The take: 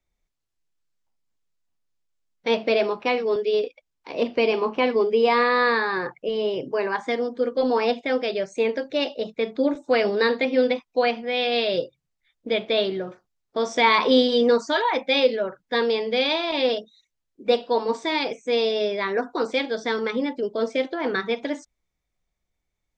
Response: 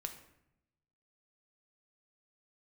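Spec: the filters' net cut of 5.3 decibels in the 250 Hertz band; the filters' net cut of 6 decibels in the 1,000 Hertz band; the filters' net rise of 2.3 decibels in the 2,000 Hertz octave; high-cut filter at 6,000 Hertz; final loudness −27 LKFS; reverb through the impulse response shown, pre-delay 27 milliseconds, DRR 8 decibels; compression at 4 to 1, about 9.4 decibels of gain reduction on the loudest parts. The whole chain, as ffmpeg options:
-filter_complex "[0:a]lowpass=6000,equalizer=frequency=250:width_type=o:gain=-5.5,equalizer=frequency=1000:width_type=o:gain=-8.5,equalizer=frequency=2000:width_type=o:gain=5,acompressor=threshold=-27dB:ratio=4,asplit=2[link_01][link_02];[1:a]atrim=start_sample=2205,adelay=27[link_03];[link_02][link_03]afir=irnorm=-1:irlink=0,volume=-6dB[link_04];[link_01][link_04]amix=inputs=2:normalize=0,volume=3dB"

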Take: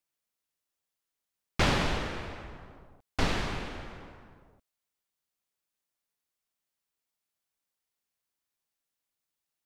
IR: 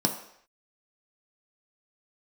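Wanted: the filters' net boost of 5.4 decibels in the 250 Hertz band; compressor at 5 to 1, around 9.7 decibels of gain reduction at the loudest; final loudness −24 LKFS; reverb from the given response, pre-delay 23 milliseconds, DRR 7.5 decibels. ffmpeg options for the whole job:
-filter_complex "[0:a]equalizer=frequency=250:width_type=o:gain=7,acompressor=threshold=-30dB:ratio=5,asplit=2[link_01][link_02];[1:a]atrim=start_sample=2205,adelay=23[link_03];[link_02][link_03]afir=irnorm=-1:irlink=0,volume=-17dB[link_04];[link_01][link_04]amix=inputs=2:normalize=0,volume=12dB"

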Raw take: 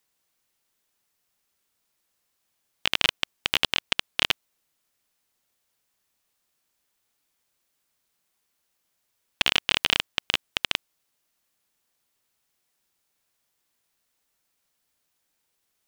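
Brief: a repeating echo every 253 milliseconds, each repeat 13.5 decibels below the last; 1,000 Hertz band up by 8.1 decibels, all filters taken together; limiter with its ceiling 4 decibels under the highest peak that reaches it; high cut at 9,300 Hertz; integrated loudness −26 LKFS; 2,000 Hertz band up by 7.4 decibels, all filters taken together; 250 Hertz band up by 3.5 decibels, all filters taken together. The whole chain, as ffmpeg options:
ffmpeg -i in.wav -af "lowpass=9300,equalizer=frequency=250:width_type=o:gain=4,equalizer=frequency=1000:width_type=o:gain=7.5,equalizer=frequency=2000:width_type=o:gain=8,alimiter=limit=-1.5dB:level=0:latency=1,aecho=1:1:253|506:0.211|0.0444,volume=-2dB" out.wav

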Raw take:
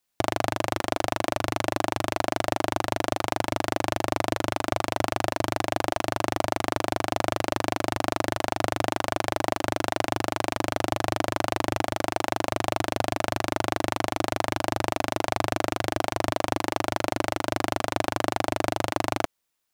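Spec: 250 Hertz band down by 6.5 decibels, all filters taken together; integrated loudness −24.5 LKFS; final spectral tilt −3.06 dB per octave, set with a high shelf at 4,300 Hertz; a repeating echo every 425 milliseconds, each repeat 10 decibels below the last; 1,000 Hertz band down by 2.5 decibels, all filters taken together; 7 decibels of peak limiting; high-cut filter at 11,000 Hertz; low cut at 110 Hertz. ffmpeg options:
ffmpeg -i in.wav -af "highpass=110,lowpass=11000,equalizer=frequency=250:width_type=o:gain=-8.5,equalizer=frequency=1000:width_type=o:gain=-3,highshelf=frequency=4300:gain=3.5,alimiter=limit=-11dB:level=0:latency=1,aecho=1:1:425|850|1275|1700:0.316|0.101|0.0324|0.0104,volume=9.5dB" out.wav

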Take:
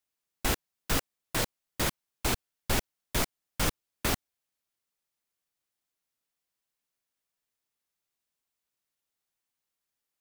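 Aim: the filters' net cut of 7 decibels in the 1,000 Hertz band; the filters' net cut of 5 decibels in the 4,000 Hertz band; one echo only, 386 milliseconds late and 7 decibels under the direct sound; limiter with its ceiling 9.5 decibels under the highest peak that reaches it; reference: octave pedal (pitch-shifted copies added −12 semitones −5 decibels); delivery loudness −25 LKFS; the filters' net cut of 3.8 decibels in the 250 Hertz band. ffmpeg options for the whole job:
ffmpeg -i in.wav -filter_complex "[0:a]equalizer=frequency=250:width_type=o:gain=-4.5,equalizer=frequency=1000:width_type=o:gain=-9,equalizer=frequency=4000:width_type=o:gain=-6,alimiter=level_in=0.5dB:limit=-24dB:level=0:latency=1,volume=-0.5dB,aecho=1:1:386:0.447,asplit=2[link_01][link_02];[link_02]asetrate=22050,aresample=44100,atempo=2,volume=-5dB[link_03];[link_01][link_03]amix=inputs=2:normalize=0,volume=13.5dB" out.wav

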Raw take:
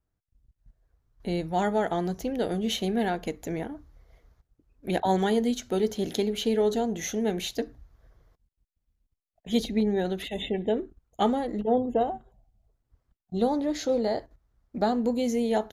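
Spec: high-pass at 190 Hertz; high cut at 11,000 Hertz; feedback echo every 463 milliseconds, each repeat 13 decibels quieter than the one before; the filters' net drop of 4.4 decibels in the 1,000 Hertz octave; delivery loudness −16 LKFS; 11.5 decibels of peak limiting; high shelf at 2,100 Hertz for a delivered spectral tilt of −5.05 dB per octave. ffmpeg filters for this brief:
ffmpeg -i in.wav -af "highpass=190,lowpass=11000,equalizer=frequency=1000:width_type=o:gain=-5.5,highshelf=frequency=2100:gain=-6.5,alimiter=level_in=1.5dB:limit=-24dB:level=0:latency=1,volume=-1.5dB,aecho=1:1:463|926|1389:0.224|0.0493|0.0108,volume=19dB" out.wav

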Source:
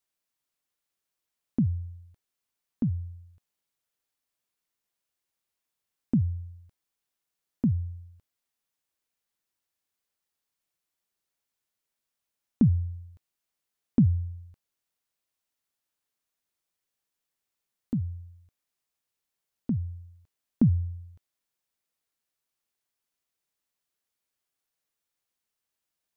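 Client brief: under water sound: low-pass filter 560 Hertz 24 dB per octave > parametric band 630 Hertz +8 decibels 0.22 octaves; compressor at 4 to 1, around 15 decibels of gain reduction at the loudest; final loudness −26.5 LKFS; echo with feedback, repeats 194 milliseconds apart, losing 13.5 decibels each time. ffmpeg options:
ffmpeg -i in.wav -af "acompressor=threshold=-35dB:ratio=4,lowpass=frequency=560:width=0.5412,lowpass=frequency=560:width=1.3066,equalizer=frequency=630:width_type=o:width=0.22:gain=8,aecho=1:1:194|388:0.211|0.0444,volume=14.5dB" out.wav

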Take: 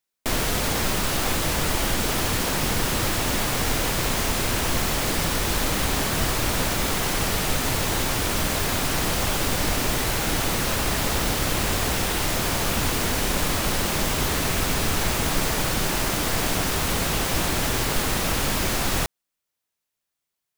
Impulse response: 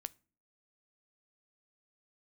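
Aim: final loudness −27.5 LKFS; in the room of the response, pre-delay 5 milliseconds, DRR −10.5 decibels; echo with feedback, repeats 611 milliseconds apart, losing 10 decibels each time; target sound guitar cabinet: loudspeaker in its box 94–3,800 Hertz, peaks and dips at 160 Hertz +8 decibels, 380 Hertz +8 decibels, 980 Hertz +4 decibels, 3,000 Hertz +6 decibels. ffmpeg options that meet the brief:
-filter_complex "[0:a]aecho=1:1:611|1222|1833|2444:0.316|0.101|0.0324|0.0104,asplit=2[link_01][link_02];[1:a]atrim=start_sample=2205,adelay=5[link_03];[link_02][link_03]afir=irnorm=-1:irlink=0,volume=14dB[link_04];[link_01][link_04]amix=inputs=2:normalize=0,highpass=94,equalizer=frequency=160:width_type=q:width=4:gain=8,equalizer=frequency=380:width_type=q:width=4:gain=8,equalizer=frequency=980:width_type=q:width=4:gain=4,equalizer=frequency=3000:width_type=q:width=4:gain=6,lowpass=frequency=3800:width=0.5412,lowpass=frequency=3800:width=1.3066,volume=-15.5dB"

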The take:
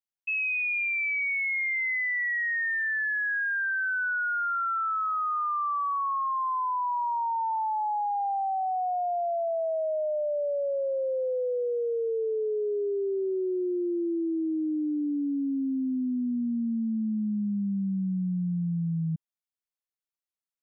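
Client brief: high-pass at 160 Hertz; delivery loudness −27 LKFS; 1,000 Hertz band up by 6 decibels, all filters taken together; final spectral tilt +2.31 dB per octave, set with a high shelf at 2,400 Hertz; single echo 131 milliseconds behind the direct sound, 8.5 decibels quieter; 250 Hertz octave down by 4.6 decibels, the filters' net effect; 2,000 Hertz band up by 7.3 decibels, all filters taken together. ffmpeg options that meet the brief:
ffmpeg -i in.wav -af "highpass=160,equalizer=frequency=250:width_type=o:gain=-5.5,equalizer=frequency=1000:width_type=o:gain=5.5,equalizer=frequency=2000:width_type=o:gain=5,highshelf=frequency=2400:gain=5,aecho=1:1:131:0.376,volume=-5.5dB" out.wav

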